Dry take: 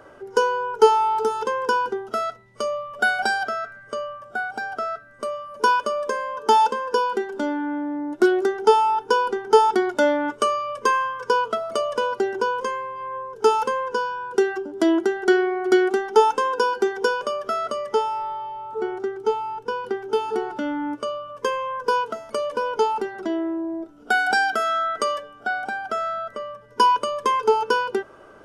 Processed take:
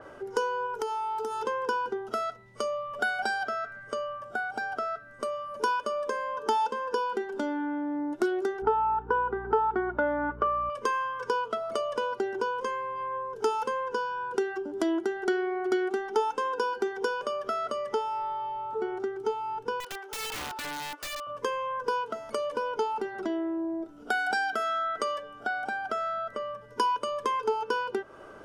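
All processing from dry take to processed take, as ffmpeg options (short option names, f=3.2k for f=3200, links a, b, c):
-filter_complex "[0:a]asettb=1/sr,asplit=3[a][b][c];[a]atrim=end=0.664[d];[b]atrim=start=0.66:end=1.44,asetpts=PTS-STARTPTS,afade=t=in:d=0.004:c=qsin,afade=t=out:st=0.776:d=0.004:c=qsin,highshelf=f=8.5k:g=11,acompressor=threshold=-26dB:ratio=4:attack=3.2:release=140:knee=1:detection=peak[e];[c]atrim=start=1.436[f];[d][e]acrossfade=d=0.004:c1=hsin:c2=qsin[g];[g][f]acrossfade=d=0.004:c1=qsin:c2=hsin,asettb=1/sr,asplit=3[h][i][j];[h]atrim=end=8.624[k];[i]atrim=start=8.62:end=10.7,asetpts=PTS-STARTPTS,afade=t=in:d=0.004:c=qsin,afade=t=out:st=2.076:d=0.004:c=qsin,lowpass=f=1.4k:t=q:w=1.8,aeval=exprs='val(0)+0.0126*(sin(2*PI*60*n/s)+sin(2*PI*2*60*n/s)/2+sin(2*PI*3*60*n/s)/3+sin(2*PI*4*60*n/s)/4+sin(2*PI*5*60*n/s)/5)':c=same[l];[j]atrim=start=10.696[m];[k][l]acrossfade=d=0.004:c1=hsin:c2=qsin[n];[n][m]acrossfade=d=0.004:c1=qsin:c2=hsin,asettb=1/sr,asplit=3[o][p][q];[o]atrim=end=19.804[r];[p]atrim=start=19.8:end=21.27,asetpts=PTS-STARTPTS,afade=t=in:d=0.004:c=qsin,afade=t=out:st=1.466:d=0.004:c=qsin,highpass=820,aeval=exprs='(mod(28.2*val(0)+1,2)-1)/28.2':c=same[s];[q]atrim=start=21.266[t];[r][s]acrossfade=d=0.004:c1=hsin:c2=qsin[u];[u][t]acrossfade=d=0.004:c1=qsin:c2=hsin,acompressor=threshold=-32dB:ratio=2,adynamicequalizer=threshold=0.00355:dfrequency=5000:dqfactor=0.7:tfrequency=5000:tqfactor=0.7:attack=5:release=100:ratio=0.375:range=2:mode=cutabove:tftype=highshelf"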